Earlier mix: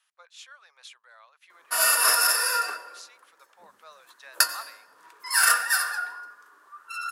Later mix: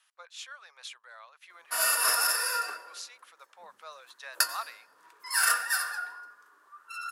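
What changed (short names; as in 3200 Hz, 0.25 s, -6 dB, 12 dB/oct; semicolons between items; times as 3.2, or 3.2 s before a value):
speech +3.5 dB; background -5.0 dB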